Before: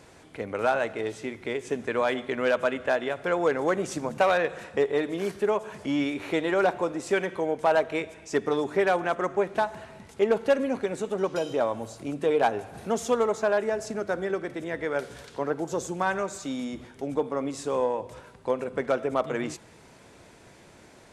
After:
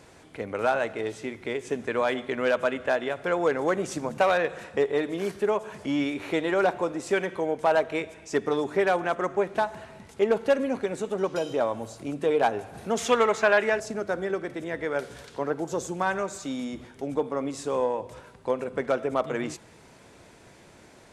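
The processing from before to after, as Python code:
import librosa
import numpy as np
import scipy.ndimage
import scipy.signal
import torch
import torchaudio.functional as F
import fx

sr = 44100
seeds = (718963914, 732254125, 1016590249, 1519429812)

y = fx.peak_eq(x, sr, hz=2300.0, db=12.5, octaves=1.9, at=(12.97, 13.8))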